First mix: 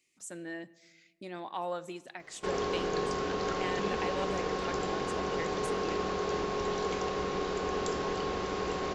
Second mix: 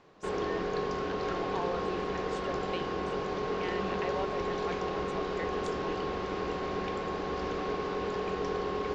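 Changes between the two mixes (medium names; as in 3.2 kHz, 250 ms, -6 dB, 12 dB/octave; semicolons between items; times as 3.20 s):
background: entry -2.20 s; master: add distance through air 130 m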